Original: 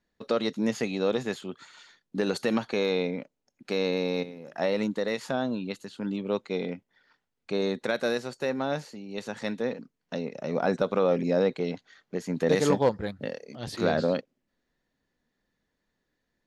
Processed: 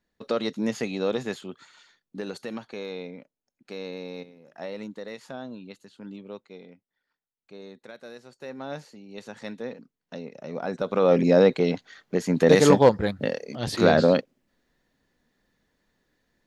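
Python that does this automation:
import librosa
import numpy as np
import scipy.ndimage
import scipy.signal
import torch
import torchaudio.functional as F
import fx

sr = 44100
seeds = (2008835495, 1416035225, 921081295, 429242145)

y = fx.gain(x, sr, db=fx.line((1.33, 0.0), (2.53, -9.0), (6.16, -9.0), (6.66, -16.0), (8.1, -16.0), (8.75, -5.0), (10.72, -5.0), (11.17, 7.0)))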